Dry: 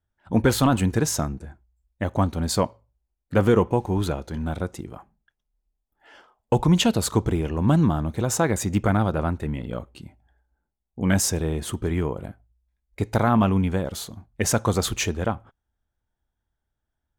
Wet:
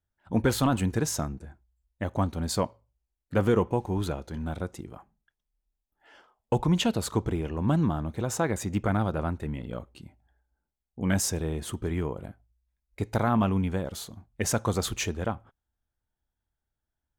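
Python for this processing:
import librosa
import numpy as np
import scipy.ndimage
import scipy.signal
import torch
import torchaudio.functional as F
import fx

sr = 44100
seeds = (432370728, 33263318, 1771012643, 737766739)

y = fx.bass_treble(x, sr, bass_db=-1, treble_db=-3, at=(6.58, 8.91))
y = y * 10.0 ** (-5.0 / 20.0)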